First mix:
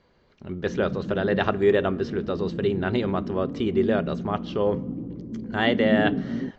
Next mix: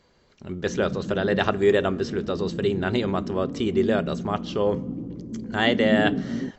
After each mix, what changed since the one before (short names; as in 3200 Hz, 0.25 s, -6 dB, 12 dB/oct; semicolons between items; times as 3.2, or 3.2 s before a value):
master: remove air absorption 160 m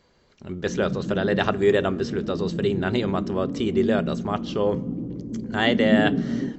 background: send on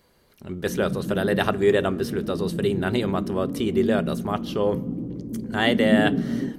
master: remove brick-wall FIR low-pass 7800 Hz